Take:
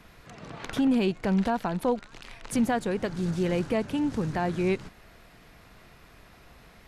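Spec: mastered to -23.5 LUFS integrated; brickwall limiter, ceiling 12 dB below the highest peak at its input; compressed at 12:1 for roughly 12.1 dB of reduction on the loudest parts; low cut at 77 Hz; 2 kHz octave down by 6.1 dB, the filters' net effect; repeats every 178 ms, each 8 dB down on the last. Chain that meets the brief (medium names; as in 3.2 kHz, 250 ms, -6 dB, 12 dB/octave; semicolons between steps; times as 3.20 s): high-pass 77 Hz; peaking EQ 2 kHz -8 dB; compression 12:1, threshold -33 dBFS; peak limiter -32.5 dBFS; feedback delay 178 ms, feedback 40%, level -8 dB; trim +17.5 dB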